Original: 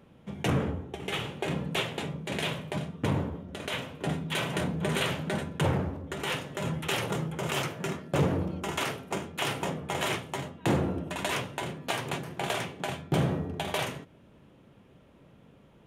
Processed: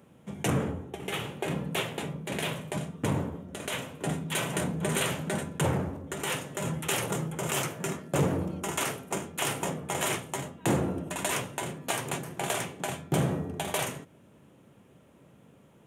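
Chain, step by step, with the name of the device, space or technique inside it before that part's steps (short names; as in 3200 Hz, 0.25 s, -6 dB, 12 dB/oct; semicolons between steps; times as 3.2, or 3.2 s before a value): 0.9–2.56 bell 7500 Hz -5.5 dB 0.95 oct; budget condenser microphone (HPF 85 Hz; resonant high shelf 5900 Hz +7 dB, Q 1.5)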